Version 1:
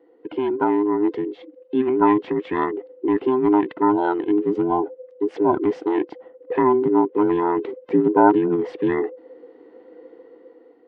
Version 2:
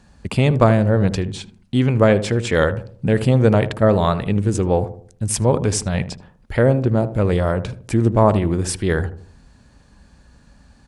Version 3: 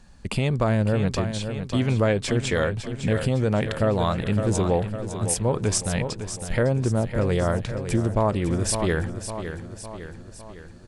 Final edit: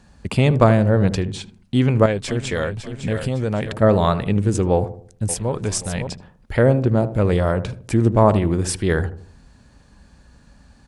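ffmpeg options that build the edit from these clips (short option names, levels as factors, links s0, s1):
-filter_complex "[2:a]asplit=2[s0][s1];[1:a]asplit=3[s2][s3][s4];[s2]atrim=end=2.062[s5];[s0]atrim=start=2.058:end=3.722[s6];[s3]atrim=start=3.718:end=5.292[s7];[s1]atrim=start=5.288:end=6.072[s8];[s4]atrim=start=6.068[s9];[s5][s6]acrossfade=d=0.004:c1=hsin:c2=hsin[s10];[s10][s7]acrossfade=d=0.004:c1=hsin:c2=hsin[s11];[s11][s8]acrossfade=d=0.004:c1=hsin:c2=hsin[s12];[s12][s9]acrossfade=d=0.004:c1=hsin:c2=hsin"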